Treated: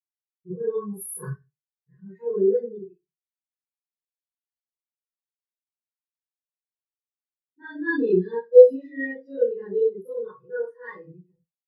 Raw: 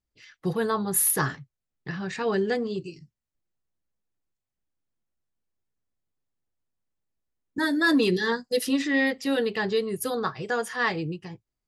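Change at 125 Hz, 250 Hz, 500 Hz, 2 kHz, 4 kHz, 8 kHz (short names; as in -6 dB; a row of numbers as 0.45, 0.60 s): -4.0 dB, -4.5 dB, +8.0 dB, -7.5 dB, under -25 dB, under -10 dB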